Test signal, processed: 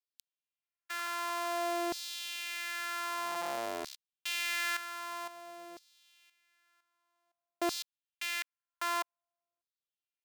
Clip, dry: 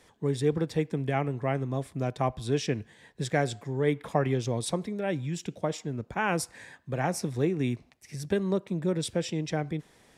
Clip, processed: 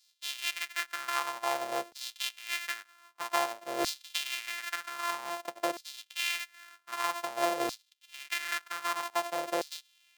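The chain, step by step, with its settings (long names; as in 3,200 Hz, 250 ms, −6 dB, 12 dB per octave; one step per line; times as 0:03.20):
samples sorted by size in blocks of 128 samples
auto-filter high-pass saw down 0.52 Hz 480–4,600 Hz
level −3 dB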